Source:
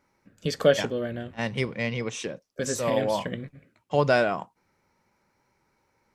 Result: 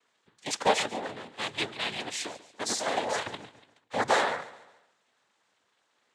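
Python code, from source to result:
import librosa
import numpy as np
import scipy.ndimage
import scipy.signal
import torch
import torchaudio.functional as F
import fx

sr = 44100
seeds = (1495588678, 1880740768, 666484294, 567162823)

p1 = fx.highpass(x, sr, hz=1200.0, slope=6)
p2 = fx.noise_vocoder(p1, sr, seeds[0], bands=6)
p3 = p2 + fx.echo_feedback(p2, sr, ms=142, feedback_pct=42, wet_db=-17, dry=0)
y = p3 * librosa.db_to_amplitude(2.5)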